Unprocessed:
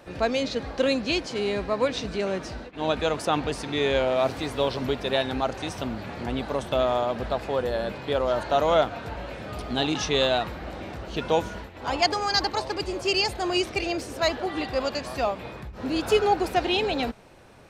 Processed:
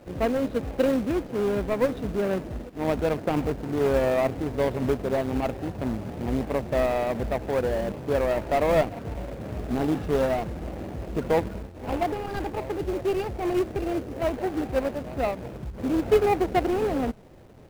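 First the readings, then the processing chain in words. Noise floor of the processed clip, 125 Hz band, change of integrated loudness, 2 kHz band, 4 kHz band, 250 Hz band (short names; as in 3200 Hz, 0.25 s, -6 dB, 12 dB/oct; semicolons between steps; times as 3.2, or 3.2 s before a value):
-41 dBFS, +3.5 dB, -0.5 dB, -5.0 dB, -14.5 dB, +3.0 dB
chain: median filter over 41 samples; air absorption 260 m; in parallel at -5 dB: companded quantiser 4-bit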